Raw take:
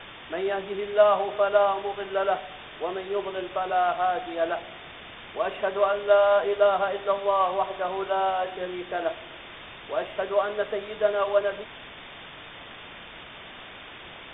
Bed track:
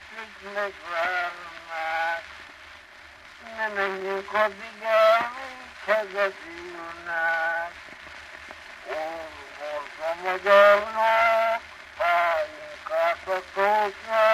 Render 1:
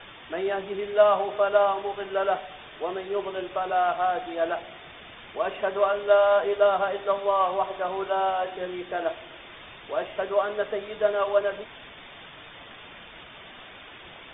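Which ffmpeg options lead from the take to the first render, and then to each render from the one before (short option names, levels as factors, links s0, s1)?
-af "afftdn=nr=6:nf=-44"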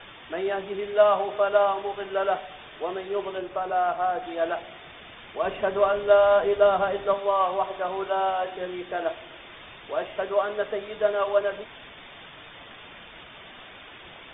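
-filter_complex "[0:a]asettb=1/sr,asplit=3[s0][s1][s2];[s0]atrim=end=3.384[s3];[s1]atrim=start=3.38:end=4.23,asetpts=PTS-STARTPTS,afade=t=in:d=0.004:c=qsin,afade=t=out:st=0.846:d=0.004:c=qsin,highshelf=f=3200:g=-11.5[s4];[s2]atrim=start=4.226[s5];[s3][s4]acrossfade=d=0.004:c1=hsin:c2=qsin[s6];[s6][s5]acrossfade=d=0.004:c1=qsin:c2=hsin,asettb=1/sr,asplit=3[s7][s8][s9];[s7]atrim=end=5.434[s10];[s8]atrim=start=5.43:end=7.14,asetpts=PTS-STARTPTS,afade=t=in:d=0.004:c=qsin,afade=t=out:st=1.706:d=0.004:c=qsin,lowshelf=f=240:g=10[s11];[s9]atrim=start=7.136[s12];[s10][s11]acrossfade=d=0.004:c1=hsin:c2=qsin[s13];[s13][s12]acrossfade=d=0.004:c1=qsin:c2=hsin"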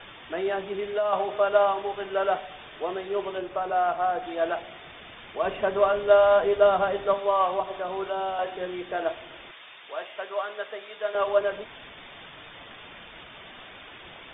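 -filter_complex "[0:a]asettb=1/sr,asplit=3[s0][s1][s2];[s0]atrim=end=0.504[s3];[s1]atrim=start=0.5:end=1.13,asetpts=PTS-STARTPTS,afade=t=in:d=0.004:c=qsin,afade=t=out:st=0.626:d=0.004:c=qsin,acompressor=threshold=0.0794:ratio=6:attack=3.2:release=140:knee=1:detection=peak[s4];[s2]atrim=start=1.126[s5];[s3][s4]acrossfade=d=0.004:c1=hsin:c2=qsin[s6];[s6][s5]acrossfade=d=0.004:c1=qsin:c2=hsin,asettb=1/sr,asplit=3[s7][s8][s9];[s7]atrim=end=7.604[s10];[s8]atrim=start=7.6:end=8.39,asetpts=PTS-STARTPTS,afade=t=in:d=0.004:c=qsin,afade=t=out:st=0.786:d=0.004:c=qsin,acrossover=split=470|3000[s11][s12][s13];[s12]acompressor=threshold=0.0282:ratio=3:attack=3.2:release=140:knee=2.83:detection=peak[s14];[s11][s14][s13]amix=inputs=3:normalize=0[s15];[s9]atrim=start=8.386[s16];[s10][s15]acrossfade=d=0.004:c1=hsin:c2=qsin[s17];[s17][s16]acrossfade=d=0.004:c1=qsin:c2=hsin,asettb=1/sr,asplit=3[s18][s19][s20];[s18]atrim=end=9.514[s21];[s19]atrim=start=9.51:end=11.15,asetpts=PTS-STARTPTS,afade=t=in:d=0.004:c=qsin,afade=t=out:st=1.636:d=0.004:c=qsin,highpass=f=1200:p=1[s22];[s20]atrim=start=11.146[s23];[s21][s22]acrossfade=d=0.004:c1=hsin:c2=qsin[s24];[s24][s23]acrossfade=d=0.004:c1=qsin:c2=hsin"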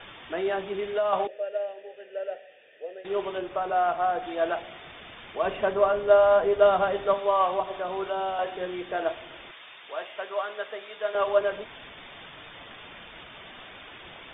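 -filter_complex "[0:a]asettb=1/sr,asplit=3[s0][s1][s2];[s0]atrim=end=1.274[s3];[s1]atrim=start=1.27:end=3.05,asetpts=PTS-STARTPTS,afade=t=in:d=0.004:c=qsin,afade=t=out:st=1.776:d=0.004:c=qsin,asplit=3[s4][s5][s6];[s4]bandpass=f=530:t=q:w=8,volume=1[s7];[s5]bandpass=f=1840:t=q:w=8,volume=0.501[s8];[s6]bandpass=f=2480:t=q:w=8,volume=0.355[s9];[s7][s8][s9]amix=inputs=3:normalize=0[s10];[s2]atrim=start=3.046[s11];[s3][s10]acrossfade=d=0.004:c1=hsin:c2=qsin[s12];[s12][s11]acrossfade=d=0.004:c1=qsin:c2=hsin,asettb=1/sr,asplit=3[s13][s14][s15];[s13]atrim=end=5.734[s16];[s14]atrim=start=5.73:end=6.59,asetpts=PTS-STARTPTS,afade=t=in:d=0.004:c=qsin,afade=t=out:st=0.856:d=0.004:c=qsin,highshelf=f=2700:g=-8[s17];[s15]atrim=start=6.586[s18];[s16][s17]acrossfade=d=0.004:c1=hsin:c2=qsin[s19];[s19][s18]acrossfade=d=0.004:c1=qsin:c2=hsin"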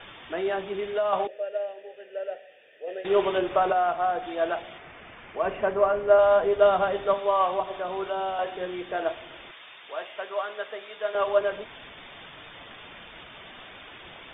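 -filter_complex "[0:a]asettb=1/sr,asplit=3[s0][s1][s2];[s0]atrim=end=2.874[s3];[s1]atrim=start=2.87:end=3.73,asetpts=PTS-STARTPTS,afade=t=in:d=0.004:c=qsin,afade=t=out:st=0.856:d=0.004:c=qsin,acontrast=75[s4];[s2]atrim=start=3.726[s5];[s3][s4]acrossfade=d=0.004:c1=hsin:c2=qsin[s6];[s6][s5]acrossfade=d=0.004:c1=qsin:c2=hsin,asettb=1/sr,asplit=3[s7][s8][s9];[s7]atrim=end=4.784[s10];[s8]atrim=start=4.78:end=6.19,asetpts=PTS-STARTPTS,afade=t=in:d=0.004:c=qsin,afade=t=out:st=1.406:d=0.004:c=qsin,lowpass=f=2700:w=0.5412,lowpass=f=2700:w=1.3066[s11];[s9]atrim=start=6.186[s12];[s10][s11]acrossfade=d=0.004:c1=hsin:c2=qsin[s13];[s13][s12]acrossfade=d=0.004:c1=qsin:c2=hsin"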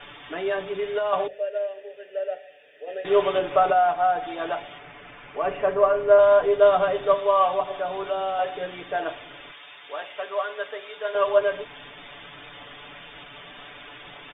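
-af "bandreject=f=50:t=h:w=6,bandreject=f=100:t=h:w=6,bandreject=f=150:t=h:w=6,bandreject=f=200:t=h:w=6,aecho=1:1:6.9:0.75"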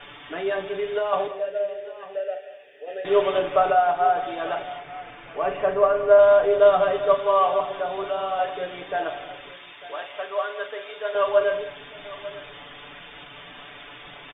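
-filter_complex "[0:a]asplit=2[s0][s1];[s1]adelay=41,volume=0.282[s2];[s0][s2]amix=inputs=2:normalize=0,aecho=1:1:168|199|898:0.126|0.133|0.141"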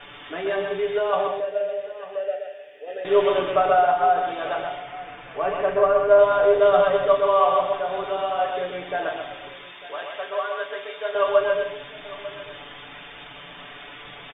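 -filter_complex "[0:a]asplit=2[s0][s1];[s1]adelay=22,volume=0.251[s2];[s0][s2]amix=inputs=2:normalize=0,aecho=1:1:128:0.596"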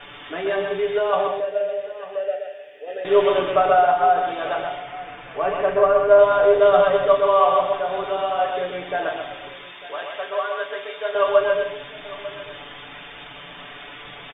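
-af "volume=1.26"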